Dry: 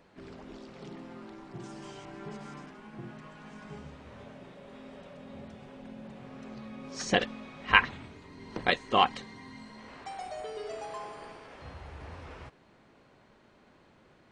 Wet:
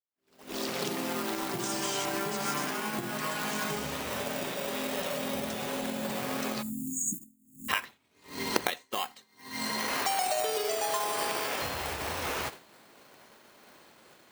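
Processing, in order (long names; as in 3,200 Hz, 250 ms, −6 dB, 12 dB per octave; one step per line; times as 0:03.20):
camcorder AGC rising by 48 dB per second
in parallel at −10 dB: sample-and-hold swept by an LFO 16×, swing 60% 0.28 Hz
on the sum: RIAA equalisation recording
downward expander −21 dBFS
time-frequency box erased 0:06.62–0:07.69, 330–6,600 Hz
on a send at −21 dB: convolution reverb, pre-delay 3 ms
on the sum: level −14.5 dB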